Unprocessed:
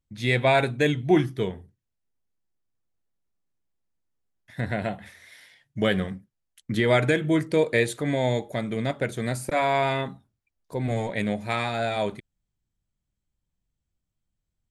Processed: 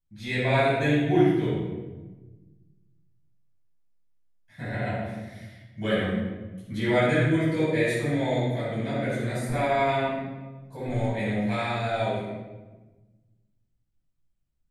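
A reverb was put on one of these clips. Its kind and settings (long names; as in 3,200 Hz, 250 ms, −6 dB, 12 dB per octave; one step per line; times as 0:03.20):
rectangular room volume 780 cubic metres, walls mixed, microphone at 8.2 metres
level −16 dB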